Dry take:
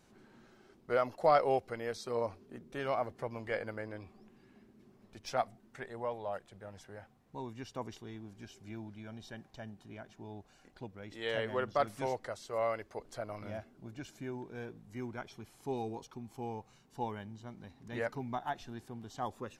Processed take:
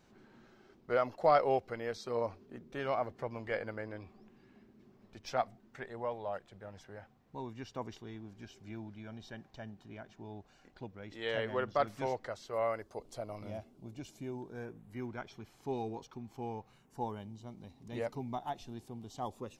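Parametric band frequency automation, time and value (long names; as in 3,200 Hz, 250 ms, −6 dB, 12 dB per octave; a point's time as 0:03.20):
parametric band −11 dB 0.71 octaves
0:12.43 10,000 Hz
0:12.98 1,600 Hz
0:14.34 1,600 Hz
0:15.11 10,000 Hz
0:16.58 10,000 Hz
0:17.22 1,600 Hz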